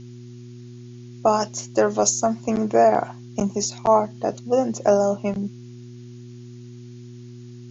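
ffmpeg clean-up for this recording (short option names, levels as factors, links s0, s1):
-af "bandreject=f=121.1:t=h:w=4,bandreject=f=242.2:t=h:w=4,bandreject=f=363.3:t=h:w=4,agate=range=0.0891:threshold=0.0224"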